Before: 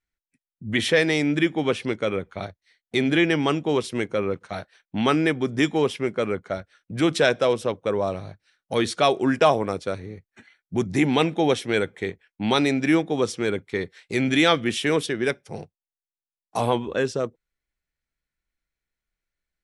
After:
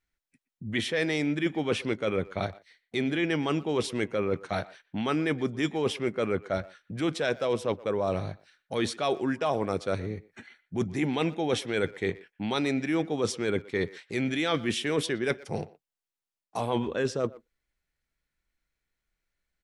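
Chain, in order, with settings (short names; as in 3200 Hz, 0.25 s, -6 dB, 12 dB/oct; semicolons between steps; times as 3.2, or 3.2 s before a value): high shelf 8500 Hz -4 dB; reverse; compressor 10:1, threshold -27 dBFS, peak gain reduction 15 dB; reverse; speakerphone echo 0.12 s, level -19 dB; gain +3 dB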